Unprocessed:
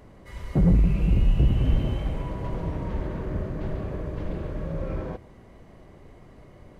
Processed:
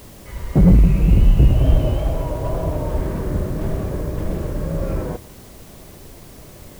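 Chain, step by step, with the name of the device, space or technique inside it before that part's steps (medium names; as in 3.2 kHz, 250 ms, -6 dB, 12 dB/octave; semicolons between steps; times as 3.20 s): 1.50–2.98 s: graphic EQ with 31 bands 200 Hz -10 dB, 630 Hz +9 dB, 2 kHz -5 dB; plain cassette with noise reduction switched in (tape noise reduction on one side only decoder only; wow and flutter; white noise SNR 30 dB); trim +7.5 dB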